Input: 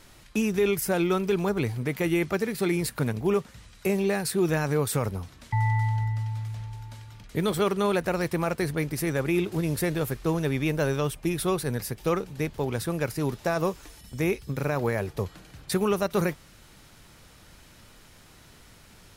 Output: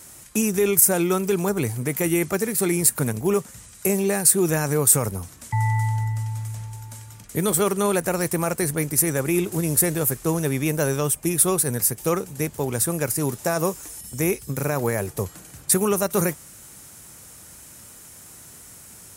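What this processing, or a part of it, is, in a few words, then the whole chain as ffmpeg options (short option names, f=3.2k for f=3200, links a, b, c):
budget condenser microphone: -af "highpass=66,highshelf=f=5.7k:t=q:w=1.5:g=12,volume=3dB"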